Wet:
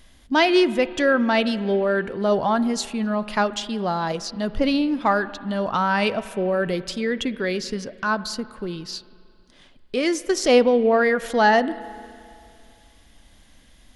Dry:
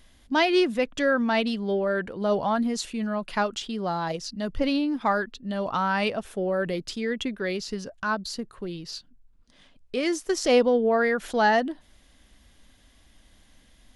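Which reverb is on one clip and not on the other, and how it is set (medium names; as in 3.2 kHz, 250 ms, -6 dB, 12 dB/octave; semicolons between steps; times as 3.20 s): spring tank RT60 2.4 s, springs 33/45 ms, chirp 40 ms, DRR 15.5 dB; trim +4 dB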